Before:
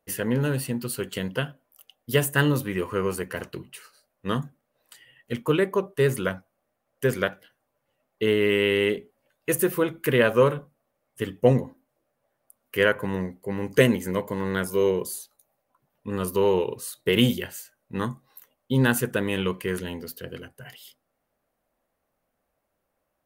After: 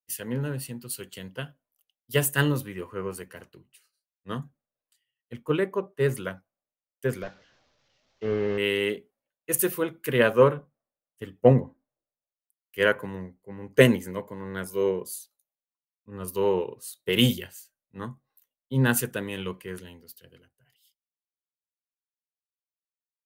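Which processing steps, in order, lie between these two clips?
0:07.22–0:08.58: linear delta modulator 32 kbit/s, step −38.5 dBFS
multiband upward and downward expander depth 100%
level −5.5 dB

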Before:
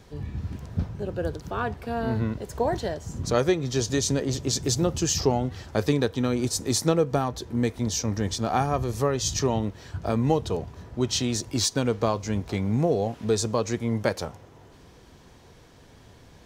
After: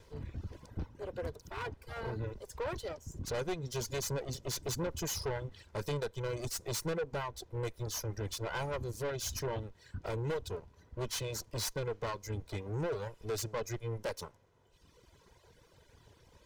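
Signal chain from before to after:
lower of the sound and its delayed copy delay 2 ms
reverb reduction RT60 1.3 s
soft clipping −25 dBFS, distortion −8 dB
level −6 dB

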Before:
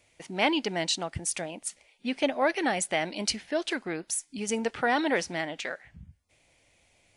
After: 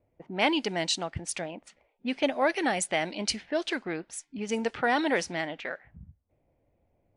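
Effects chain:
low-pass that shuts in the quiet parts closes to 590 Hz, open at −24.5 dBFS

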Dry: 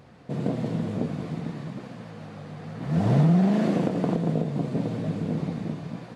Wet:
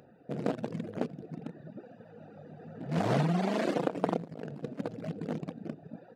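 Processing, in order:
adaptive Wiener filter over 41 samples
reverb reduction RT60 1.5 s
0:04.19–0:04.80: compressor whose output falls as the input rises −35 dBFS, ratio −0.5
high-pass filter 880 Hz 6 dB per octave
level +7.5 dB

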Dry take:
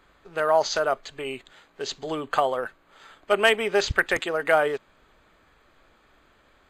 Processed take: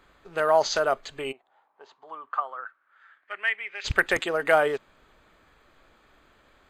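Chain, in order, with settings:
loose part that buzzes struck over −25 dBFS, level −21 dBFS
0:01.31–0:03.84: resonant band-pass 730 Hz → 2,300 Hz, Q 4.8

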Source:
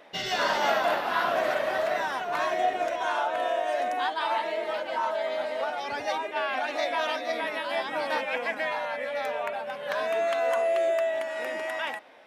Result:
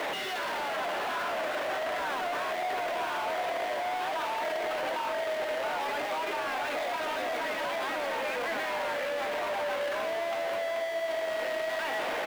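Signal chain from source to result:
sign of each sample alone
three-way crossover with the lows and the highs turned down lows −14 dB, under 240 Hz, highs −13 dB, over 3,400 Hz
slap from a distant wall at 130 metres, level −7 dB
level −3 dB

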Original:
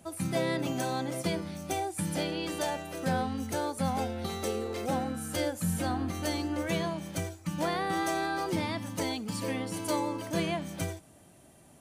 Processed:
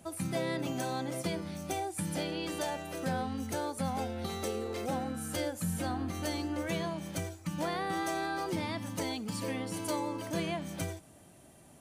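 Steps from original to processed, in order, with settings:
downward compressor 1.5 to 1, threshold −36 dBFS, peak gain reduction 4.5 dB

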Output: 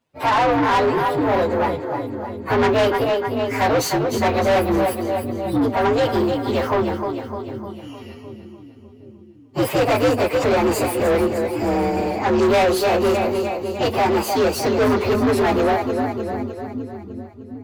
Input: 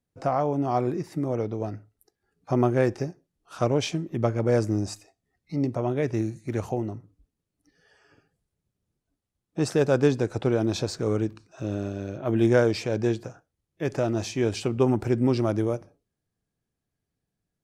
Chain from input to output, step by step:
partials spread apart or drawn together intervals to 127%
echo with a time of its own for lows and highs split 310 Hz, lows 761 ms, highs 303 ms, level −10 dB
mid-hump overdrive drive 29 dB, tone 3,600 Hz, clips at −8 dBFS
level −1 dB

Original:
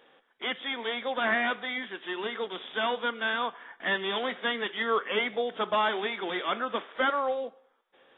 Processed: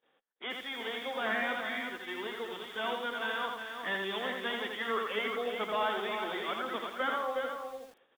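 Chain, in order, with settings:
single-tap delay 362 ms −6.5 dB
noise gate −59 dBFS, range −20 dB
feedback echo at a low word length 83 ms, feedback 35%, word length 8 bits, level −3.5 dB
level −7 dB

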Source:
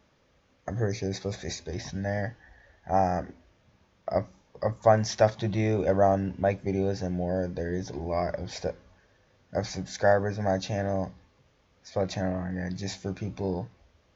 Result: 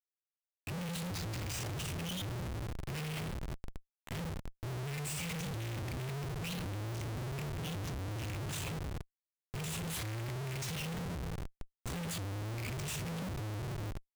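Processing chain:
pitch shifter swept by a sawtooth +11 semitones, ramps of 1,107 ms
elliptic band-stop filter 140–2,400 Hz, stop band 40 dB
high-shelf EQ 2,400 Hz −6.5 dB
coupled-rooms reverb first 0.53 s, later 3.1 s, from −14 dB, DRR 1 dB
comparator with hysteresis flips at −49 dBFS
level +2 dB

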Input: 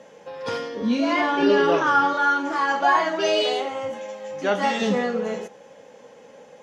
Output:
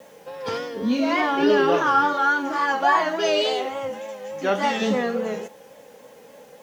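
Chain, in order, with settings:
bit-depth reduction 10 bits, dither triangular
pitch vibrato 3.5 Hz 61 cents

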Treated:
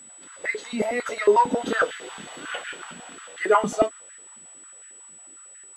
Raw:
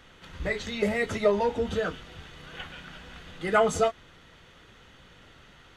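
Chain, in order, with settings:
source passing by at 0:02.22, 11 m/s, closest 6.5 metres
steady tone 7,900 Hz −50 dBFS
high-pass on a step sequencer 11 Hz 220–1,700 Hz
level +6 dB

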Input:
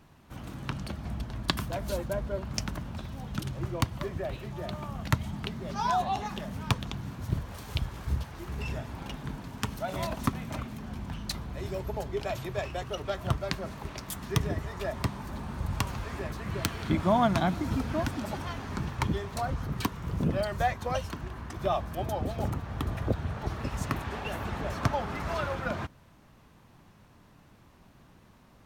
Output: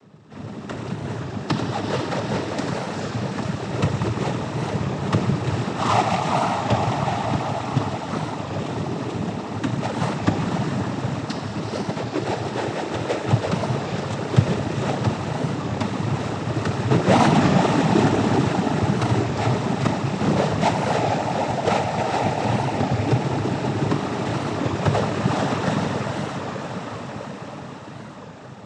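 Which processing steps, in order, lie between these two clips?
each half-wave held at its own peak
in parallel at −5.5 dB: decimation without filtering 16×
on the sum: high-shelf EQ 5,600 Hz −7.5 dB
on a send: feedback delay with all-pass diffusion 451 ms, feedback 72%, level −5 dB
on the sum: feedback delay network reverb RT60 3.3 s, high-frequency decay 0.8×, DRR 3 dB
cochlear-implant simulation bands 12
wow of a warped record 33 1/3 rpm, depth 100 cents

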